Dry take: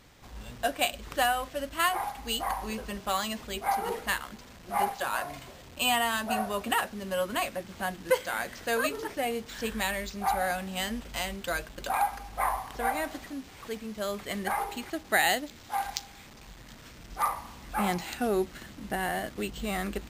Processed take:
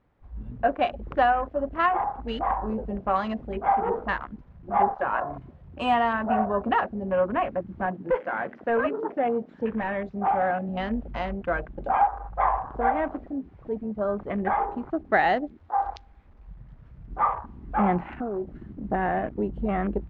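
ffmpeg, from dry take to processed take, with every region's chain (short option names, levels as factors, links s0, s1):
-filter_complex "[0:a]asettb=1/sr,asplit=3[s0][s1][s2];[s0]atrim=end=7.854[s3];[s1]atrim=start=7.85:end=10.69,asetpts=PTS-STARTPTS,afade=t=in:d=0.004:c=qsin,afade=t=out:st=2.836:d=0.004:c=qsin,highpass=110,asoftclip=type=hard:threshold=0.0596[s4];[s2]atrim=start=10.686[s5];[s3][s4]acrossfade=d=0.004:c1=hsin:c2=qsin[s6];[s6][s5]acrossfade=d=0.004:c1=qsin:c2=hsin,asettb=1/sr,asplit=3[s7][s8][s9];[s7]atrim=end=18.134[s10];[s8]atrim=start=18.13:end=18.73,asetpts=PTS-STARTPTS,afade=t=in:d=0.004:c=qsin,afade=t=out:st=0.596:d=0.004:c=qsin,acompressor=threshold=0.0224:ratio=10:attack=3.2:release=140:knee=1:detection=peak,acrusher=bits=2:mode=log:mix=0:aa=0.000001[s11];[s9]atrim=start=18.726[s12];[s10][s11]acrossfade=d=0.004:c1=hsin:c2=qsin[s13];[s13][s12]acrossfade=d=0.004:c1=qsin:c2=hsin,afwtdn=0.0126,lowpass=1300,volume=2.24"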